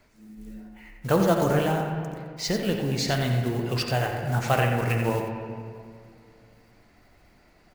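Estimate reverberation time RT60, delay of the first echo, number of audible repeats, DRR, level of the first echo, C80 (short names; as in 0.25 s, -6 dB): 2.3 s, 88 ms, 1, 2.0 dB, -8.0 dB, 3.5 dB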